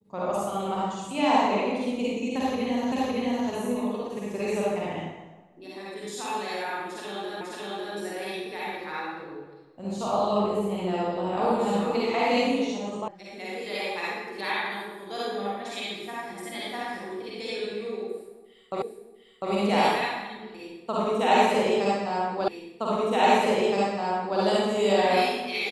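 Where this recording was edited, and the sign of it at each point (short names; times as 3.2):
2.92 repeat of the last 0.56 s
7.41 repeat of the last 0.55 s
13.08 sound cut off
18.82 repeat of the last 0.7 s
22.48 repeat of the last 1.92 s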